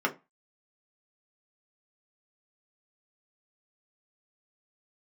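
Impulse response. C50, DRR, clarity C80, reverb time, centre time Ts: 17.0 dB, 0.0 dB, 25.5 dB, 0.25 s, 9 ms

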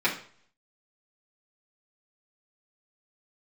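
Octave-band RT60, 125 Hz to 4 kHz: 0.65 s, 0.50 s, 0.50 s, 0.50 s, 0.45 s, 0.45 s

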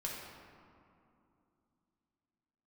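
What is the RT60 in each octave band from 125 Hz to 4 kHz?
3.3 s, 3.7 s, 2.7 s, 2.6 s, 1.9 s, 1.2 s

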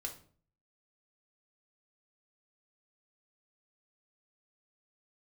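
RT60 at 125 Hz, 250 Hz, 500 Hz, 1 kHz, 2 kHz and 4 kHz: 0.70 s, 0.60 s, 0.50 s, 0.45 s, 0.35 s, 0.35 s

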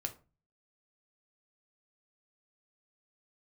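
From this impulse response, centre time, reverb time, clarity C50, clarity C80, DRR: 8 ms, 0.30 s, 15.0 dB, 21.5 dB, 5.0 dB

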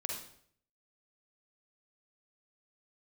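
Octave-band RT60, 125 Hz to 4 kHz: 0.80 s, 0.65 s, 0.65 s, 0.60 s, 0.55 s, 0.55 s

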